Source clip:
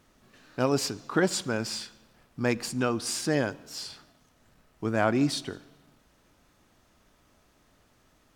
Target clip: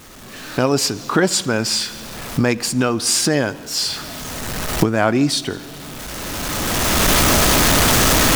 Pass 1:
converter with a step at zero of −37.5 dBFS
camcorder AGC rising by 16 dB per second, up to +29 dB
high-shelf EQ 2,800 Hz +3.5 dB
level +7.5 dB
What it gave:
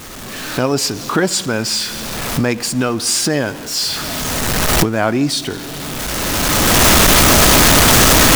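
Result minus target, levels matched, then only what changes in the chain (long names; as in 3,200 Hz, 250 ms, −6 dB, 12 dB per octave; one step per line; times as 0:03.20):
converter with a step at zero: distortion +9 dB
change: converter with a step at zero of −47.5 dBFS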